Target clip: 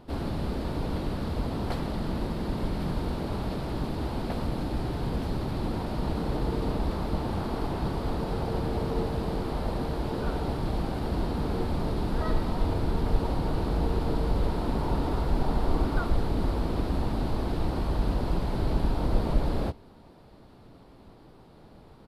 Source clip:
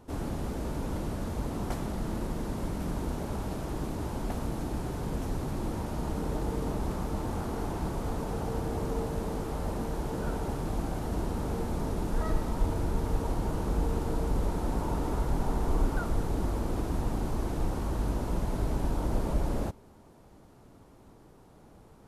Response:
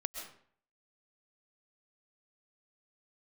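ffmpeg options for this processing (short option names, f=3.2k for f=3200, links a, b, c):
-filter_complex "[0:a]asplit=2[a][b];[b]asetrate=35002,aresample=44100,atempo=1.25992,volume=-5dB[c];[a][c]amix=inputs=2:normalize=0,highshelf=f=5.3k:t=q:w=3:g=-6,volume=2dB"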